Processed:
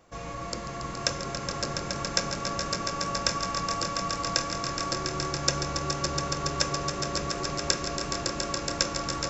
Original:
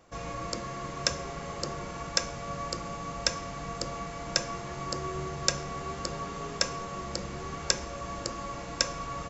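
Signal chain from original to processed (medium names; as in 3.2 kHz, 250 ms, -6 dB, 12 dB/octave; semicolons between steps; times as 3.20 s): echo with a slow build-up 140 ms, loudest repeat 5, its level -8 dB; modulated delay 445 ms, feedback 50%, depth 85 cents, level -17.5 dB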